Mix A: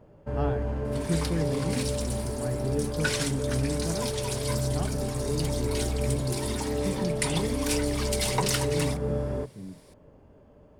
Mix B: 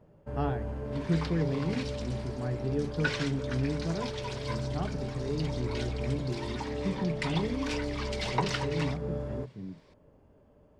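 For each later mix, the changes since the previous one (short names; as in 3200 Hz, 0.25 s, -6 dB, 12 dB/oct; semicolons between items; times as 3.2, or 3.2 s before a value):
first sound -6.0 dB; second sound: add air absorption 180 m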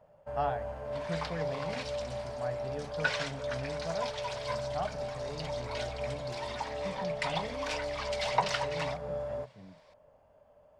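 master: add resonant low shelf 470 Hz -9 dB, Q 3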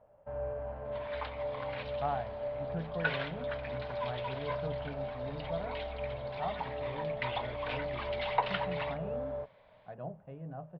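speech: entry +1.65 s; second sound: add synth low-pass 3600 Hz, resonance Q 2.2; master: add air absorption 450 m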